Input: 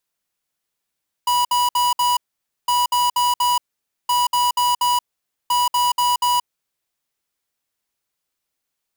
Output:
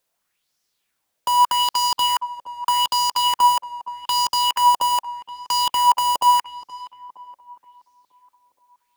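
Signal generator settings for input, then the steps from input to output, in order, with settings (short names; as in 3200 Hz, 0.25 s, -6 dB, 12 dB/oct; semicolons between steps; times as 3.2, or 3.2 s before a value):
beep pattern square 978 Hz, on 0.18 s, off 0.06 s, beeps 4, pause 0.51 s, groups 4, -17.5 dBFS
in parallel at -6 dB: wrapped overs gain 19.5 dB; on the sum: tape echo 0.472 s, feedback 59%, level -11.5 dB, low-pass 1200 Hz; LFO bell 0.82 Hz 550–5600 Hz +10 dB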